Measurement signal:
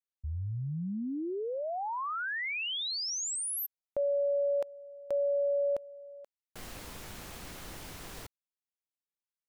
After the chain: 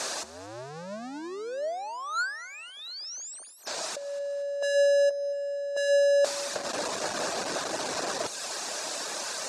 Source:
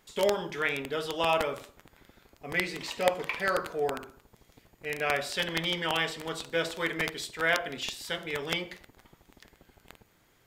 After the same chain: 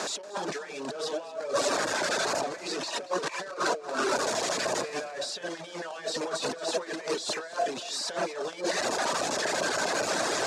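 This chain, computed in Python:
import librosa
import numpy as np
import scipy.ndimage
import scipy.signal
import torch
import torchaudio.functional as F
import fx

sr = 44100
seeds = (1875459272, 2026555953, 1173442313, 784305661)

p1 = x + 0.5 * 10.0 ** (-24.0 / 20.0) * np.sign(x)
p2 = fx.dereverb_blind(p1, sr, rt60_s=0.76)
p3 = fx.peak_eq(p2, sr, hz=1400.0, db=-6.0, octaves=0.2)
p4 = fx.over_compress(p3, sr, threshold_db=-33.0, ratio=-0.5)
p5 = fx.cabinet(p4, sr, low_hz=330.0, low_slope=12, high_hz=7600.0, hz=(620.0, 1500.0, 2100.0, 3100.0), db=(8, 5, -9, -9))
p6 = p5 + fx.echo_feedback(p5, sr, ms=233, feedback_pct=45, wet_db=-17.0, dry=0)
y = p6 * librosa.db_to_amplitude(3.5)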